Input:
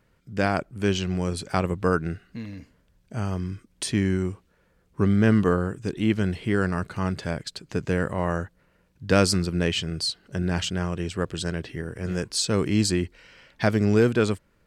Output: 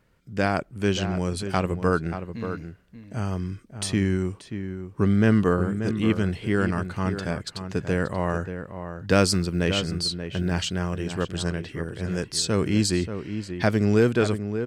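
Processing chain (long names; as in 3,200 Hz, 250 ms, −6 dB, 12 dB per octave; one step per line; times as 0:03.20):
0:09.09–0:11.35: floating-point word with a short mantissa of 6 bits
slap from a distant wall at 100 metres, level −9 dB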